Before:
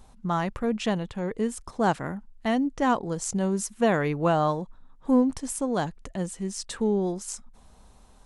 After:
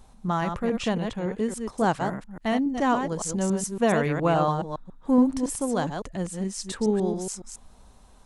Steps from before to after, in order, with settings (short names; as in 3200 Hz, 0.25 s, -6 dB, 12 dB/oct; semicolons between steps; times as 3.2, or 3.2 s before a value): reverse delay 0.14 s, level -6 dB